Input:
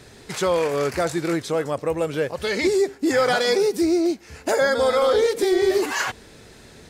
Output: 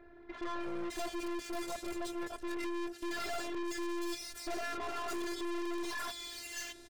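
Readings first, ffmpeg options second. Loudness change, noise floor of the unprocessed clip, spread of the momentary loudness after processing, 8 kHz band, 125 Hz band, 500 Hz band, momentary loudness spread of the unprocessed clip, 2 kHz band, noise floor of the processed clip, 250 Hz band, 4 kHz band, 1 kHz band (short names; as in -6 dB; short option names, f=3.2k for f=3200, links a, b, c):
-18.0 dB, -47 dBFS, 3 LU, -12.5 dB, -25.0 dB, -22.0 dB, 7 LU, -16.0 dB, -55 dBFS, -14.5 dB, -14.0 dB, -14.0 dB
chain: -filter_complex "[0:a]afftfilt=real='hypot(re,im)*cos(PI*b)':imag='0':win_size=512:overlap=0.75,acrossover=split=2200[a][b];[b]adelay=610[c];[a][c]amix=inputs=2:normalize=0,aeval=exprs='(tanh(70.8*val(0)+0.6)-tanh(0.6))/70.8':c=same"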